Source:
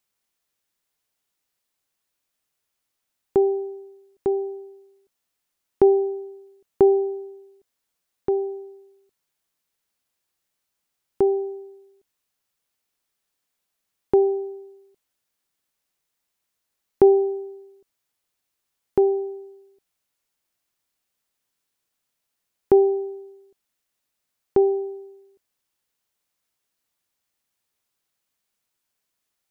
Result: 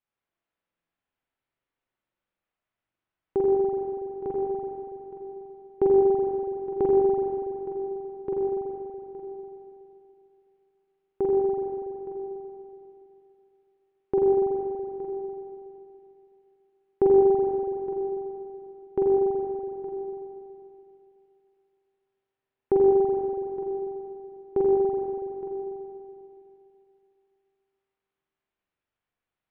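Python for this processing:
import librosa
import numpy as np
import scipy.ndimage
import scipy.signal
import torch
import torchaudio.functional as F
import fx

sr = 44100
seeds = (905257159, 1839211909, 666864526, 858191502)

p1 = fx.air_absorb(x, sr, metres=350.0)
p2 = p1 + fx.echo_single(p1, sr, ms=867, db=-15.0, dry=0)
p3 = fx.rev_spring(p2, sr, rt60_s=2.7, pass_ms=(41, 47), chirp_ms=70, drr_db=-5.0)
y = p3 * 10.0 ** (-6.5 / 20.0)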